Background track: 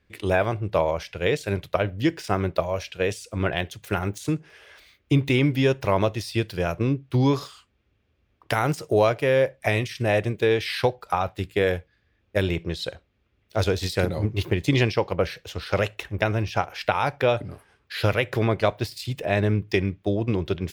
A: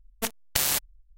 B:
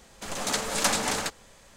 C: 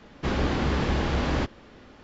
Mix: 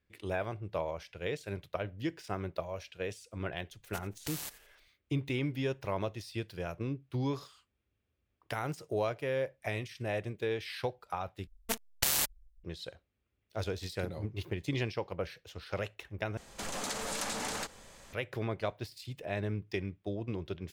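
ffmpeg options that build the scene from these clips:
-filter_complex "[1:a]asplit=2[a][b];[0:a]volume=-13dB[c];[a]aecho=1:1:87|174|261:0.141|0.0494|0.0173[d];[2:a]acompressor=threshold=-33dB:ratio=4:attack=2.6:release=76:knee=1:detection=rms[e];[c]asplit=3[f][g][h];[f]atrim=end=11.474[i];[b]atrim=end=1.17,asetpts=PTS-STARTPTS,volume=-4.5dB[j];[g]atrim=start=12.636:end=16.374[k];[e]atrim=end=1.76,asetpts=PTS-STARTPTS,volume=-0.5dB[l];[h]atrim=start=18.126[m];[d]atrim=end=1.17,asetpts=PTS-STARTPTS,volume=-16.5dB,afade=t=in:d=0.004:c=hsin,afade=t=out:st=1.166:d=0.004:c=hsin,adelay=3710[n];[i][j]acrossfade=d=0.004:c1=hsin:c2=hsin[o];[o][k]acrossfade=d=0.004:c1=hsin:c2=hsin[p];[p][l]acrossfade=d=0.004:c1=hsin:c2=hsin[q];[q][m]acrossfade=d=0.004:c1=hsin:c2=hsin[r];[r][n]amix=inputs=2:normalize=0"

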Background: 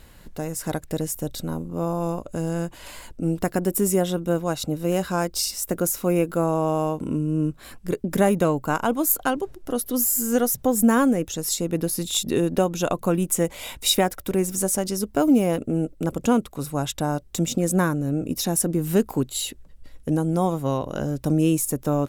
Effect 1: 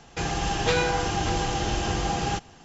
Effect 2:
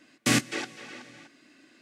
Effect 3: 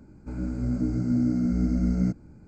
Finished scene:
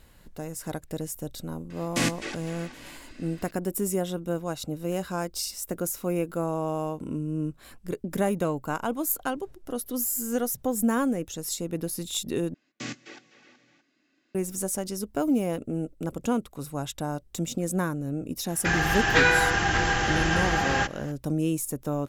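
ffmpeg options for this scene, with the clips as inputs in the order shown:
-filter_complex "[2:a]asplit=2[a][b];[0:a]volume=-6.5dB[c];[a]acompressor=mode=upward:threshold=-36dB:ratio=2.5:attack=3.2:release=140:knee=2.83:detection=peak[d];[b]aresample=16000,aresample=44100[e];[1:a]equalizer=f=1.7k:w=1.9:g=14.5[f];[c]asplit=2[g][h];[g]atrim=end=12.544[i];[e]atrim=end=1.81,asetpts=PTS-STARTPTS,volume=-13dB[j];[h]atrim=start=14.346[k];[d]atrim=end=1.81,asetpts=PTS-STARTPTS,volume=-3dB,afade=t=in:d=0.004:c=hsin,afade=t=out:st=1.806:d=0.004:c=hsin,adelay=1700[l];[f]atrim=end=2.64,asetpts=PTS-STARTPTS,volume=-1dB,afade=t=in:d=0.004:c=hsin,afade=t=out:st=2.636:d=0.004:c=hsin,adelay=18480[m];[i][j]acrossfade=d=0.004:c1=hsin:c2=hsin[n];[n][k]acrossfade=d=0.004:c1=hsin:c2=hsin[o];[o][l][m]amix=inputs=3:normalize=0"

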